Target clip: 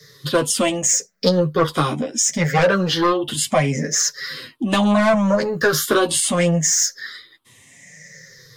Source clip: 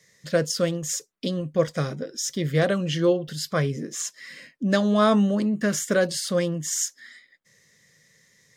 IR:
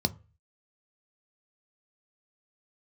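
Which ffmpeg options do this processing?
-filter_complex "[0:a]afftfilt=real='re*pow(10,15/40*sin(2*PI*(0.59*log(max(b,1)*sr/1024/100)/log(2)-(-0.71)*(pts-256)/sr)))':imag='im*pow(10,15/40*sin(2*PI*(0.59*log(max(b,1)*sr/1024/100)/log(2)-(-0.71)*(pts-256)/sr)))':win_size=1024:overlap=0.75,asplit=2[s0][s1];[s1]aeval=exprs='0.631*sin(PI/2*3.55*val(0)/0.631)':c=same,volume=0.376[s2];[s0][s2]amix=inputs=2:normalize=0,adynamicequalizer=threshold=0.0398:dfrequency=980:dqfactor=1.1:tfrequency=980:tqfactor=1.1:attack=5:release=100:ratio=0.375:range=2:mode=boostabove:tftype=bell,acrossover=split=96|460[s3][s4][s5];[s3]acompressor=threshold=0.0141:ratio=4[s6];[s4]acompressor=threshold=0.0631:ratio=4[s7];[s5]acompressor=threshold=0.141:ratio=4[s8];[s6][s7][s8]amix=inputs=3:normalize=0,flanger=delay=6.5:depth=7:regen=-4:speed=0.25:shape=triangular,volume=1.68"

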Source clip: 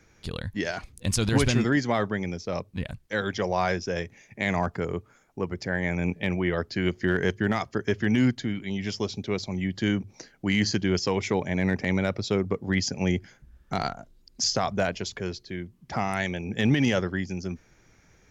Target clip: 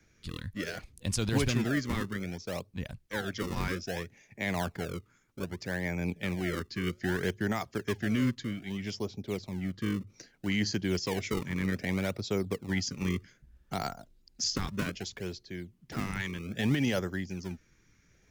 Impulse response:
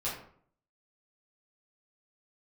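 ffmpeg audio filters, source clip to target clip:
-filter_complex "[0:a]asettb=1/sr,asplit=3[s0][s1][s2];[s0]atrim=end=8.994[s3];[s1]atrim=start=8.99:end=10.07,asetpts=PTS-STARTPTS,afade=t=in:d=0.004:c=qsin,afade=t=out:st=1.076:d=0.004:c=qsin,highshelf=f=2600:g=-10.5[s4];[s2]atrim=start=10.066[s5];[s3][s4]acrossfade=d=0.004:c1=hsin:c2=qsin[s6];[s6][s5]acrossfade=d=0.004:c1=qsin:c2=hsin,acrossover=split=360|1100|3300[s7][s8][s9][s10];[s8]acrusher=samples=32:mix=1:aa=0.000001:lfo=1:lforange=51.2:lforate=0.63[s11];[s7][s11][s9][s10]amix=inputs=4:normalize=0,volume=0.531"

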